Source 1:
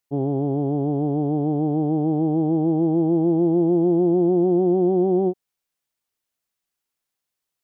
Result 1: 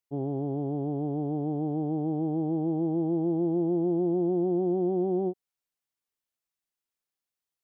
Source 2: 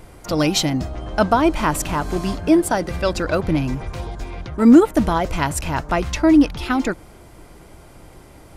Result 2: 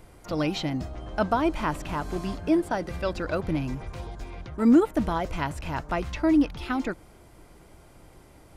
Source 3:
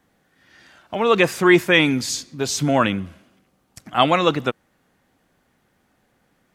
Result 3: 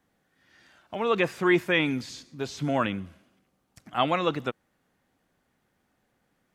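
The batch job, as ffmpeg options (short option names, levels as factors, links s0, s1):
-filter_complex "[0:a]acrossover=split=4000[s0][s1];[s1]acompressor=threshold=0.01:ratio=4:attack=1:release=60[s2];[s0][s2]amix=inputs=2:normalize=0,volume=0.398"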